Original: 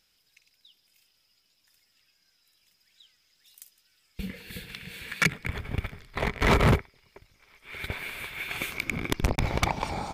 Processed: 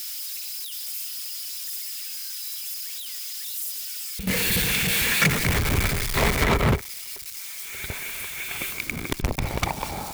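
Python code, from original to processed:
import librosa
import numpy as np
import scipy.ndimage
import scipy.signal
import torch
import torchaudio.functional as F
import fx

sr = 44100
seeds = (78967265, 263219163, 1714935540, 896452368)

y = x + 0.5 * 10.0 ** (-27.0 / 20.0) * np.diff(np.sign(x), prepend=np.sign(x[:1]))
y = fx.power_curve(y, sr, exponent=0.35, at=(4.27, 6.44))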